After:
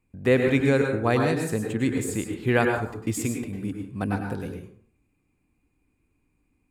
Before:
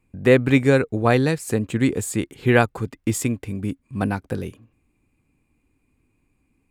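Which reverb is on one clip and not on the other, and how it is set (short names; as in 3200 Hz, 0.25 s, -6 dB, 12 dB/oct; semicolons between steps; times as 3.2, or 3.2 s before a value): plate-style reverb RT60 0.53 s, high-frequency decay 0.6×, pre-delay 90 ms, DRR 2.5 dB; gain -5.5 dB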